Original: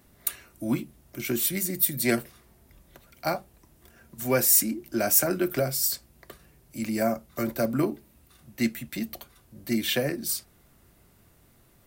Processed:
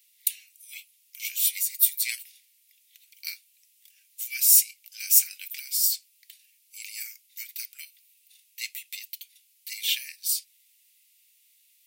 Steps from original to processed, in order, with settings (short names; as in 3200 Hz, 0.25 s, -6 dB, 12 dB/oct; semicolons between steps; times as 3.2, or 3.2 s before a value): steep high-pass 2300 Hz 48 dB/oct; gain +3 dB